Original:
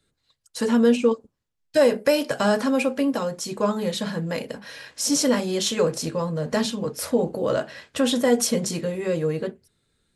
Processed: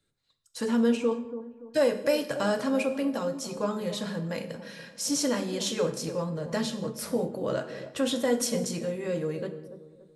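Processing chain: on a send: dark delay 0.286 s, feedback 36%, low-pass 840 Hz, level -11 dB; on the sum: non-linear reverb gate 0.24 s falling, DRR 9.5 dB; gain -6.5 dB

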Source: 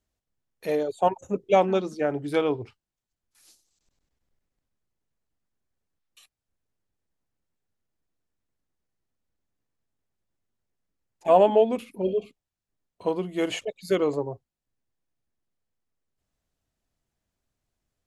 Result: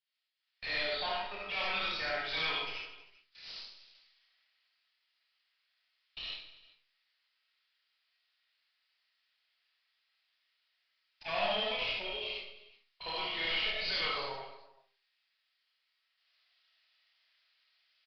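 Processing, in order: compressor 2.5:1, threshold -25 dBFS, peak gain reduction 9 dB; Butterworth band-pass 3800 Hz, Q 0.77; tube stage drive 51 dB, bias 0.5; reverse bouncing-ball echo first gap 30 ms, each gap 1.5×, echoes 5; reverb RT60 0.40 s, pre-delay 30 ms, DRR -3 dB; AGC gain up to 15 dB; downsampling 11025 Hz

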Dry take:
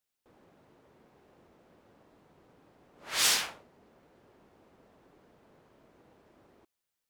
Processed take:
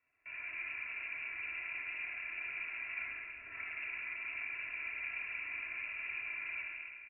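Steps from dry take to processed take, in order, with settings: median filter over 25 samples; HPF 61 Hz; comb 3 ms, depth 68%; negative-ratio compressor -58 dBFS, ratio -1; on a send: thinning echo 0.134 s, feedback 63%, level -10 dB; on the sum: shoebox room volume 3000 m³, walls mixed, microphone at 4 m; inverted band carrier 2700 Hz; gain +6.5 dB

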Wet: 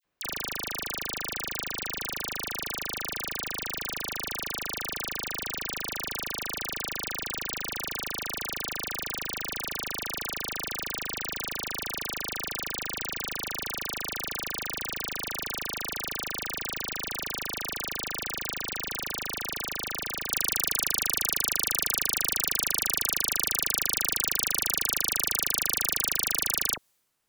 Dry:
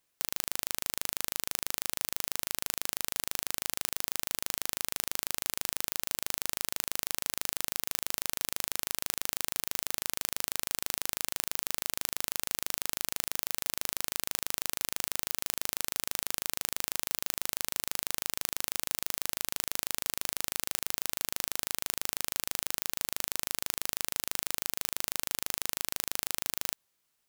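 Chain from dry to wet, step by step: bell 11000 Hz -10 dB 1.8 oct, from 20.31 s +3.5 dB; dispersion lows, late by 48 ms, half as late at 1900 Hz; mismatched tape noise reduction decoder only; gain +5 dB

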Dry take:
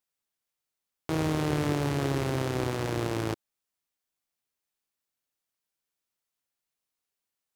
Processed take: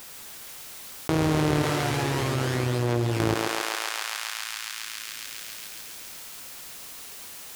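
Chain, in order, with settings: 1.62–3.2 resonator 120 Hz, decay 0.29 s, harmonics all, mix 90%; thinning echo 0.137 s, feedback 78%, high-pass 680 Hz, level -7 dB; fast leveller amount 70%; gain +3.5 dB

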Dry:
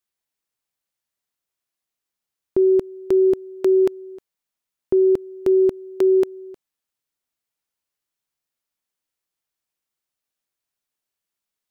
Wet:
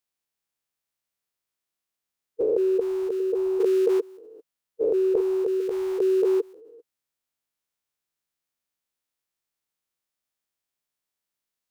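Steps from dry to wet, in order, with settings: stepped spectrum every 0.4 s; formant shift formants +4 st

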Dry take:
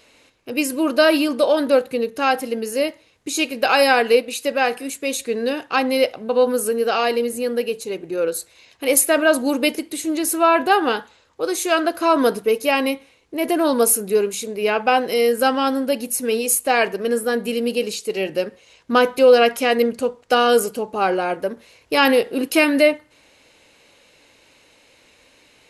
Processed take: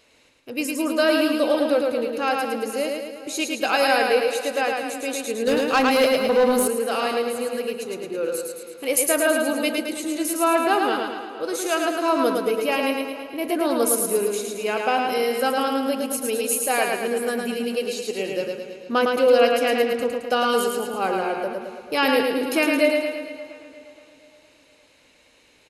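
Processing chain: on a send: feedback echo 0.109 s, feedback 54%, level -3.5 dB; 5.47–6.68 on the sum: sample leveller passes 2; tape echo 0.467 s, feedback 40%, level -16 dB, low-pass 3600 Hz; gain -5.5 dB

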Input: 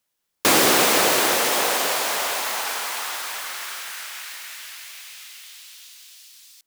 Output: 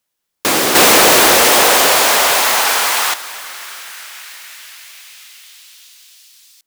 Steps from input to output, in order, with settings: 0.75–3.14 sample leveller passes 3; gain +2 dB

